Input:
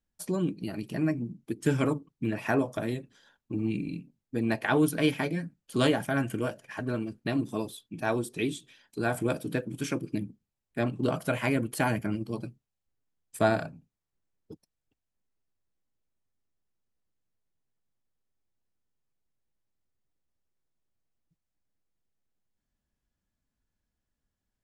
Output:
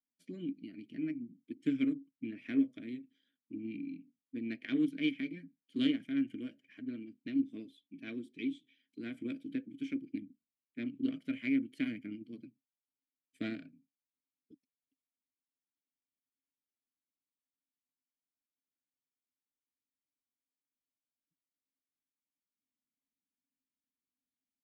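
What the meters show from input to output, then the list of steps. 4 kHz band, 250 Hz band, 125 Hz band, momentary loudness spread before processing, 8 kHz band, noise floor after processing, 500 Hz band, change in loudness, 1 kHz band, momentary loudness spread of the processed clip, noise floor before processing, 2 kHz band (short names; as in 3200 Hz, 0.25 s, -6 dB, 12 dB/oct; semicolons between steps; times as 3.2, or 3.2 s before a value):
-8.0 dB, -4.5 dB, -19.5 dB, 11 LU, under -25 dB, under -85 dBFS, -18.5 dB, -7.5 dB, under -25 dB, 15 LU, under -85 dBFS, -12.5 dB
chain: added harmonics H 3 -19 dB, 7 -30 dB, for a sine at -11 dBFS; vowel filter i; gain +4.5 dB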